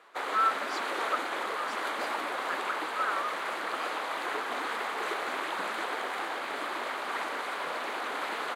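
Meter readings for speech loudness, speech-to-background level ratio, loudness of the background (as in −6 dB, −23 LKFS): −34.5 LKFS, −1.5 dB, −33.0 LKFS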